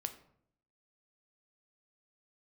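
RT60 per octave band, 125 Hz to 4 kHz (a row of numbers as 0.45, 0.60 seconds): 0.95, 0.85, 0.70, 0.60, 0.50, 0.40 seconds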